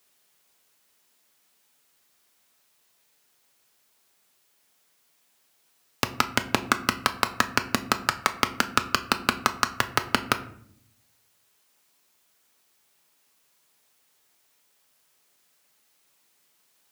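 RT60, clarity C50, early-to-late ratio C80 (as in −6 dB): 0.65 s, 15.0 dB, 17.5 dB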